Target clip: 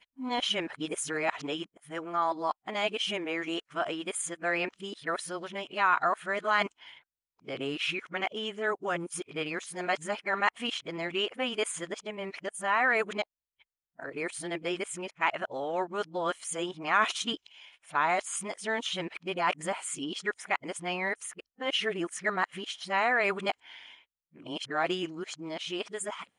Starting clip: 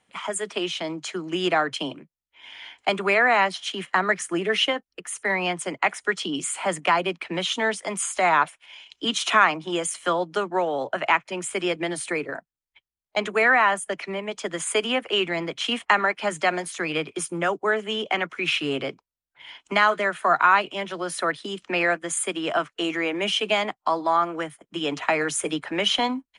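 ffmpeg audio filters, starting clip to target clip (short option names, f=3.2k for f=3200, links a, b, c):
-af "areverse,volume=-7.5dB"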